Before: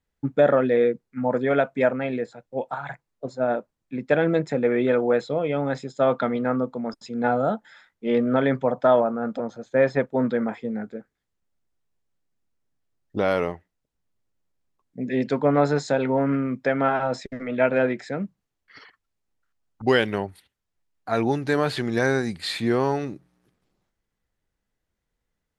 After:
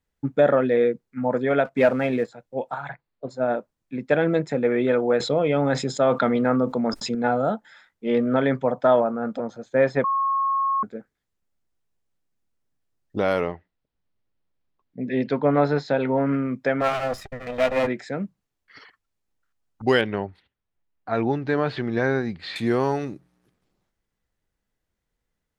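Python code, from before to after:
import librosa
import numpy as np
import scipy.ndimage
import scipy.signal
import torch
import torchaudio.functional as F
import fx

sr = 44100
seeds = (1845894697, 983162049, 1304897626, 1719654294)

y = fx.leveller(x, sr, passes=1, at=(1.65, 2.29))
y = fx.ellip_lowpass(y, sr, hz=4500.0, order=4, stop_db=40, at=(2.88, 3.29), fade=0.02)
y = fx.env_flatten(y, sr, amount_pct=50, at=(5.2, 7.15))
y = fx.lowpass(y, sr, hz=4700.0, slope=24, at=(13.41, 16.26))
y = fx.lower_of_two(y, sr, delay_ms=1.6, at=(16.8, 17.86), fade=0.02)
y = fx.air_absorb(y, sr, metres=220.0, at=(20.01, 22.56))
y = fx.edit(y, sr, fx.bleep(start_s=10.04, length_s=0.79, hz=1090.0, db=-19.5), tone=tone)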